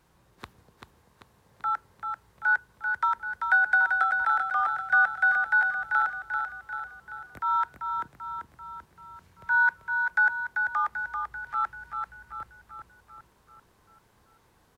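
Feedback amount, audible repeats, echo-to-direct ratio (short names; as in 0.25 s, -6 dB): 54%, 6, -4.0 dB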